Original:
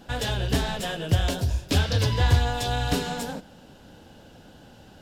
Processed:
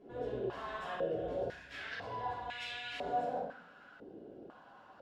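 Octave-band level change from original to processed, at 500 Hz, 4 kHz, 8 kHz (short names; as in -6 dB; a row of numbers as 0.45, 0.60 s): -6.0, -17.5, -29.0 dB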